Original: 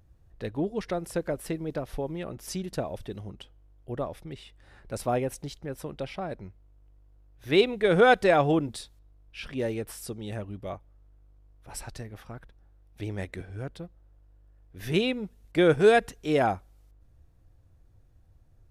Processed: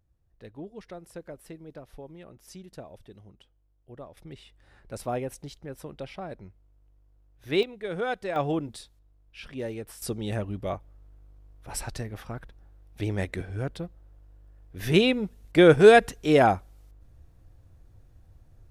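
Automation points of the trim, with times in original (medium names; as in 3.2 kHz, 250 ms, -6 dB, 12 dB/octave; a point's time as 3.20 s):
-11.5 dB
from 4.17 s -3.5 dB
from 7.63 s -11 dB
from 8.36 s -4 dB
from 10.02 s +5 dB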